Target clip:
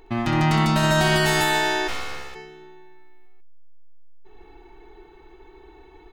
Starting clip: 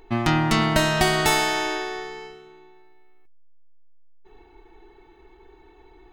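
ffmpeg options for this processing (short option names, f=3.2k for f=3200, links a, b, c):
-filter_complex "[0:a]alimiter=limit=-14dB:level=0:latency=1:release=42,aecho=1:1:64.14|148.7:0.355|1,asplit=3[a][b][c];[a]afade=t=out:st=1.87:d=0.02[d];[b]aeval=exprs='abs(val(0))':c=same,afade=t=in:st=1.87:d=0.02,afade=t=out:st=2.34:d=0.02[e];[c]afade=t=in:st=2.34:d=0.02[f];[d][e][f]amix=inputs=3:normalize=0"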